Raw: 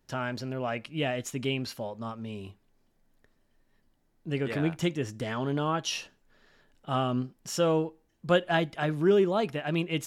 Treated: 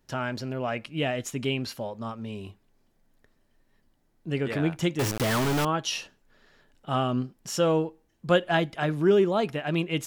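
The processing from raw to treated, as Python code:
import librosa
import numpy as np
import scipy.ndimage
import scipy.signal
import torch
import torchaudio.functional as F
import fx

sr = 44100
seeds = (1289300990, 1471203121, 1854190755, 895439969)

y = fx.quant_companded(x, sr, bits=2, at=(4.99, 5.65))
y = F.gain(torch.from_numpy(y), 2.0).numpy()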